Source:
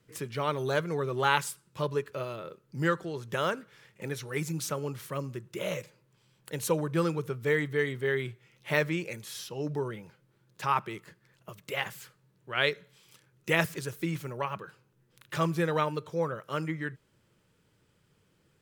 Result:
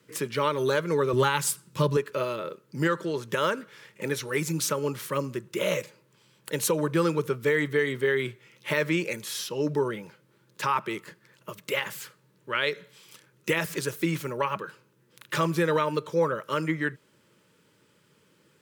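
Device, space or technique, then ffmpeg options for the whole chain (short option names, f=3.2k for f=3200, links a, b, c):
PA system with an anti-feedback notch: -filter_complex "[0:a]highpass=180,asuperstop=centerf=730:order=8:qfactor=4.6,alimiter=limit=-22dB:level=0:latency=1:release=125,asettb=1/sr,asplit=3[a][b][c];[a]atrim=end=1.134[d];[b]atrim=start=1.13:end=1.97,asetpts=PTS-STARTPTS,afade=t=in:d=0.004:c=qsin,afade=t=out:st=0.836:d=0.004:c=qsin,bass=f=250:g=10,treble=f=4k:g=4[e];[c]atrim=start=1.966[f];[d][e]acrossfade=d=0.004:c1=hsin:c2=qsin[g];[g][f]acrossfade=d=0.004:c1=qsin:c2=hsin,volume=7.5dB"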